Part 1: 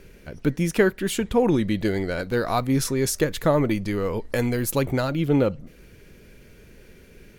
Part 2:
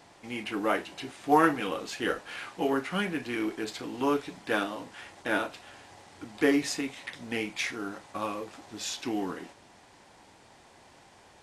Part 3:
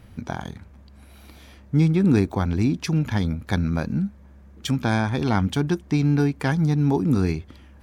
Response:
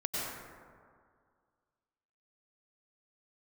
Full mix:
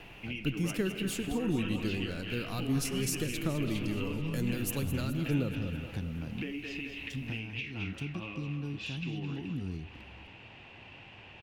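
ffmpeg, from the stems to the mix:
-filter_complex "[0:a]equalizer=f=1.3k:t=o:w=0.45:g=6.5,volume=-9dB,asplit=3[a][b][c];[b]volume=-16.5dB[d];[c]volume=-11.5dB[e];[1:a]lowpass=f=2.7k:t=q:w=9.7,equalizer=f=110:t=o:w=0.43:g=7.5,volume=0dB,asplit=2[f][g];[g]volume=-17.5dB[h];[2:a]adelay=2450,volume=-12dB[i];[f][i]amix=inputs=2:normalize=0,lowshelf=f=340:g=6.5,acompressor=threshold=-33dB:ratio=6,volume=0dB[j];[3:a]atrim=start_sample=2205[k];[d][k]afir=irnorm=-1:irlink=0[l];[e][h]amix=inputs=2:normalize=0,aecho=0:1:212|424|636|848|1060|1272|1484|1696:1|0.56|0.314|0.176|0.0983|0.0551|0.0308|0.0173[m];[a][j][l][m]amix=inputs=4:normalize=0,acrossover=split=330|3000[n][o][p];[o]acompressor=threshold=-54dB:ratio=2[q];[n][q][p]amix=inputs=3:normalize=0"

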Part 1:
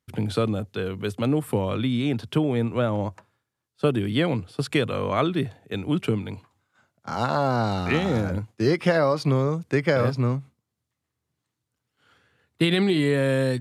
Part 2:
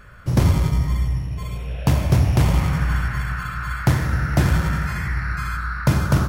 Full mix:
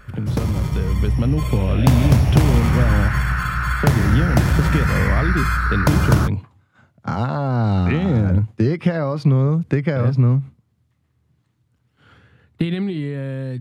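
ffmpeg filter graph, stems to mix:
-filter_complex "[0:a]acompressor=threshold=-31dB:ratio=5,bass=f=250:g=11,treble=f=4k:g=-8,volume=0.5dB[a];[1:a]acompressor=threshold=-19dB:ratio=4,volume=0dB[b];[a][b]amix=inputs=2:normalize=0,dynaudnorm=f=130:g=17:m=9dB"

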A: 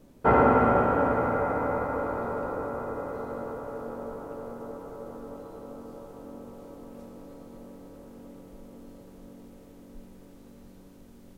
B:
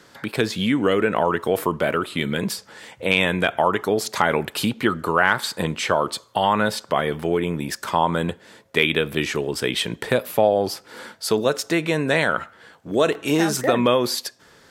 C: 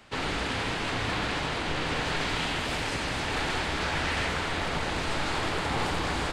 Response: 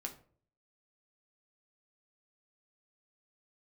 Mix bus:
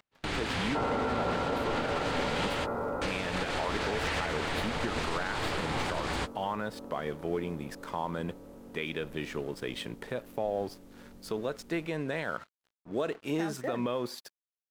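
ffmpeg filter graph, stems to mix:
-filter_complex "[0:a]adelay=500,volume=-2dB[a];[1:a]highshelf=f=3.2k:g=-8.5,aeval=exprs='sgn(val(0))*max(abs(val(0))-0.00891,0)':c=same,volume=-10dB,asplit=2[b][c];[2:a]volume=-2dB[d];[c]apad=whole_len=278887[e];[d][e]sidechaingate=range=-37dB:threshold=-54dB:ratio=16:detection=peak[f];[a][b][f]amix=inputs=3:normalize=0,alimiter=limit=-21.5dB:level=0:latency=1:release=100"

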